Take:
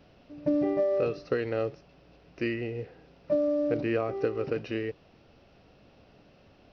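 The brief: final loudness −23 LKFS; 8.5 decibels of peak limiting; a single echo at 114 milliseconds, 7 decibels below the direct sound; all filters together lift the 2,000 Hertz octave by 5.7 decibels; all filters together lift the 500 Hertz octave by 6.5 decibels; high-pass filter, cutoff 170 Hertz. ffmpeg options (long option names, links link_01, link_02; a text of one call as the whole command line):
ffmpeg -i in.wav -af "highpass=170,equalizer=frequency=500:width_type=o:gain=7.5,equalizer=frequency=2000:width_type=o:gain=6.5,alimiter=limit=-17dB:level=0:latency=1,aecho=1:1:114:0.447,volume=2.5dB" out.wav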